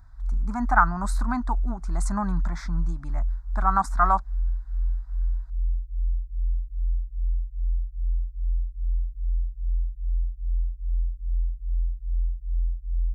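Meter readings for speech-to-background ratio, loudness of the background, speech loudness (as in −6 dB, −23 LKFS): 4.5 dB, −31.0 LKFS, −26.5 LKFS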